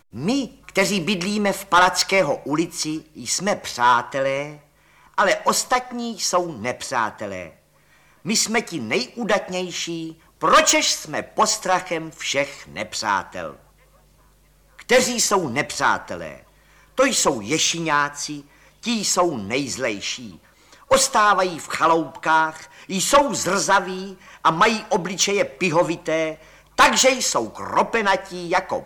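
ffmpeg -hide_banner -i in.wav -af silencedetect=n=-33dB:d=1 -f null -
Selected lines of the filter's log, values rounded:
silence_start: 13.53
silence_end: 14.79 | silence_duration: 1.26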